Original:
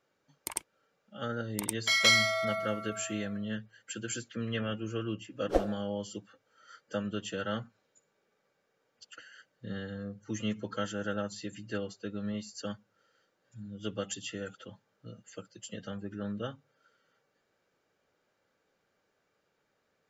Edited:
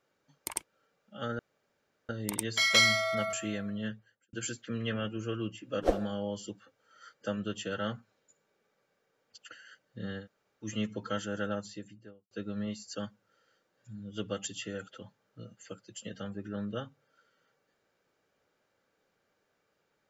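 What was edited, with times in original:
0:01.39: splice in room tone 0.70 s
0:02.63–0:03.00: remove
0:03.53–0:04.00: fade out and dull
0:09.90–0:10.32: fill with room tone, crossfade 0.10 s
0:11.15–0:11.98: fade out and dull

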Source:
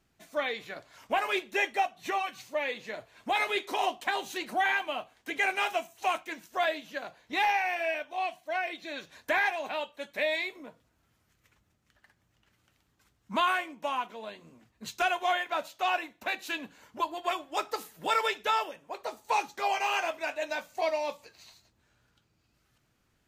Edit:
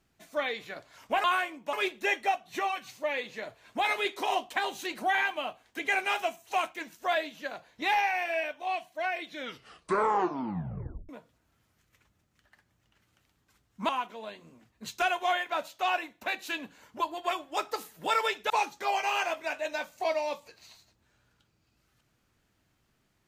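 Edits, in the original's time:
0:08.75: tape stop 1.85 s
0:13.40–0:13.89: move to 0:01.24
0:18.50–0:19.27: remove

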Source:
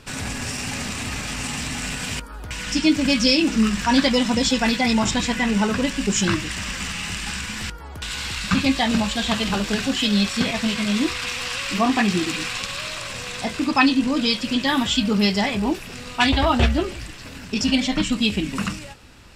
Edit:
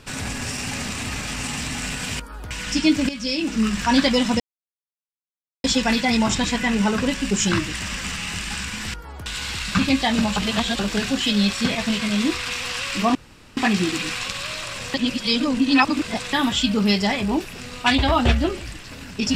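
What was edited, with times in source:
0:03.09–0:03.82: fade in, from −15 dB
0:04.40: splice in silence 1.24 s
0:09.12–0:09.55: reverse
0:11.91: splice in room tone 0.42 s
0:13.28–0:14.67: reverse

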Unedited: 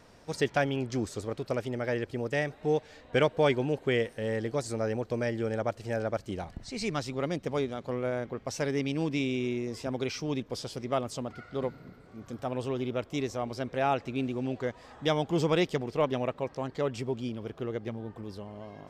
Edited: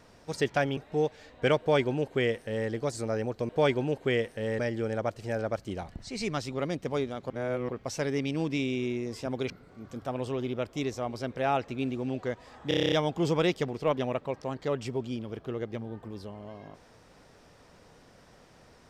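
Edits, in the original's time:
0:00.77–0:02.48: remove
0:03.30–0:04.40: duplicate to 0:05.20
0:07.91–0:08.30: reverse
0:10.11–0:11.87: remove
0:15.05: stutter 0.03 s, 9 plays

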